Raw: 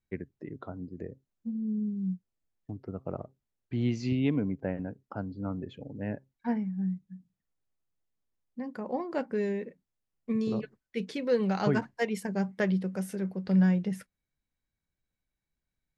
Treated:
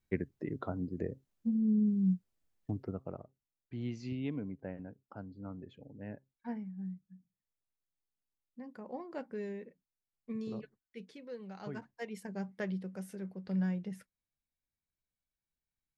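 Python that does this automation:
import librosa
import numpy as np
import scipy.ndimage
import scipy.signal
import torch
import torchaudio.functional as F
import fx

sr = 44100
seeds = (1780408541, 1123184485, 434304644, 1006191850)

y = fx.gain(x, sr, db=fx.line((2.79, 3.0), (3.21, -10.0), (10.63, -10.0), (11.41, -19.5), (12.28, -9.5)))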